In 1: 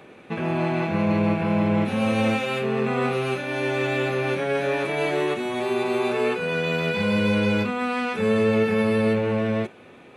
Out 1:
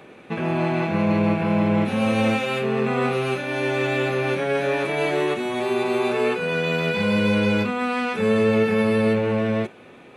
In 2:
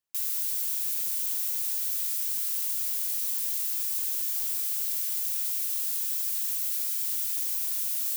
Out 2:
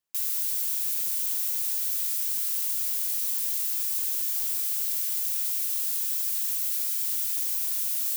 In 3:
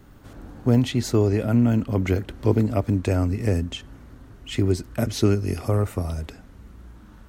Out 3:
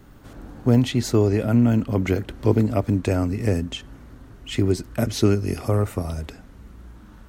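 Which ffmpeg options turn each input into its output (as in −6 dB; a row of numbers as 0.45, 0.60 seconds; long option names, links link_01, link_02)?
-af "equalizer=frequency=88:width_type=o:width=0.23:gain=-5,volume=1.5dB"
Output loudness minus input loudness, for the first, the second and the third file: +1.5, +1.5, +1.0 LU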